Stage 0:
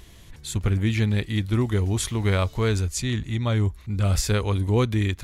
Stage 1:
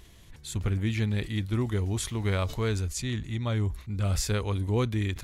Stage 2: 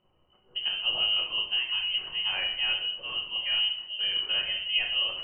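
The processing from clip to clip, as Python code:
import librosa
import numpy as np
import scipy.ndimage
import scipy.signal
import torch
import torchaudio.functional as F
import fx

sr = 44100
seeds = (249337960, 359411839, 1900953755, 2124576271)

y1 = fx.sustainer(x, sr, db_per_s=140.0)
y1 = y1 * 10.0 ** (-5.5 / 20.0)
y2 = fx.freq_invert(y1, sr, carrier_hz=3000)
y2 = fx.env_lowpass(y2, sr, base_hz=620.0, full_db=-23.5)
y2 = fx.room_shoebox(y2, sr, seeds[0], volume_m3=140.0, walls='mixed', distance_m=0.98)
y2 = y2 * 10.0 ** (-5.5 / 20.0)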